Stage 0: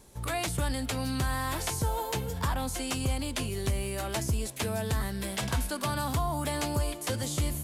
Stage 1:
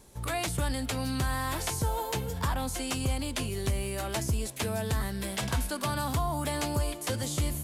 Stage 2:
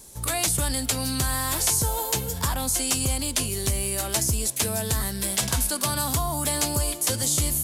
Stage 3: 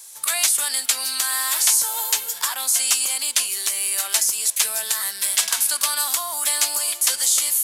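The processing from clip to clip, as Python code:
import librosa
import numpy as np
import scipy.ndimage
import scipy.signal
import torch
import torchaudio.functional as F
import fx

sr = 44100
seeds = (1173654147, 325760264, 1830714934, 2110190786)

y1 = x
y2 = fx.bass_treble(y1, sr, bass_db=0, treble_db=12)
y2 = F.gain(torch.from_numpy(y2), 2.5).numpy()
y3 = scipy.signal.sosfilt(scipy.signal.butter(2, 1300.0, 'highpass', fs=sr, output='sos'), y2)
y3 = F.gain(torch.from_numpy(y3), 6.0).numpy()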